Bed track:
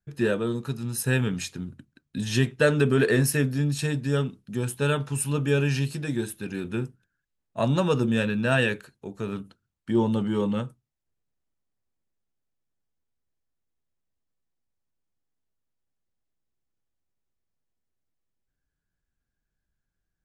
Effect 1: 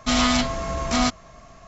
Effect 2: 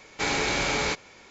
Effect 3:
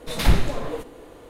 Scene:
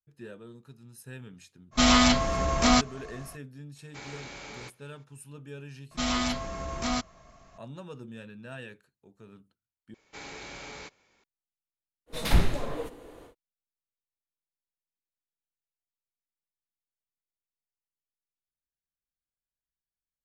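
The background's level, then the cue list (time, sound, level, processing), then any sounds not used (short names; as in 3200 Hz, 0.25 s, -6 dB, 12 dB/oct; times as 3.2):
bed track -20 dB
1.71 add 1, fades 0.05 s
3.75 add 2 -17.5 dB, fades 0.02 s
5.91 add 1 -8.5 dB
9.94 replace with 2 -17 dB
12.06 add 3 -4.5 dB, fades 0.10 s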